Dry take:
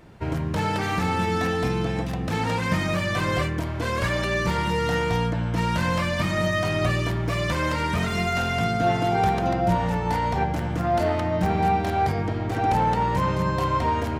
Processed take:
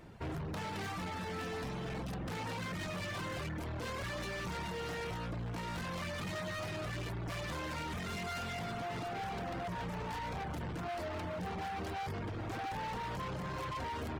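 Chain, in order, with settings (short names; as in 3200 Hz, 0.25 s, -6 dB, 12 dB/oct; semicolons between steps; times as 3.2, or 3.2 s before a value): limiter -19 dBFS, peak gain reduction 8.5 dB; hard clip -32 dBFS, distortion -7 dB; reverb removal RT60 0.54 s; gain -4.5 dB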